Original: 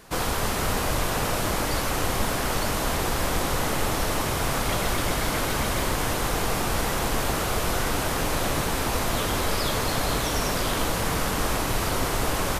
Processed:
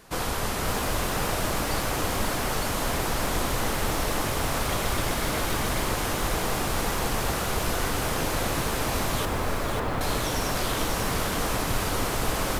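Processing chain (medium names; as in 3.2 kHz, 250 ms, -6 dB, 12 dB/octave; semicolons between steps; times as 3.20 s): 9.25–10.01 s: low-pass 2 kHz 12 dB/octave; bit-crushed delay 545 ms, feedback 35%, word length 7-bit, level -5 dB; trim -2.5 dB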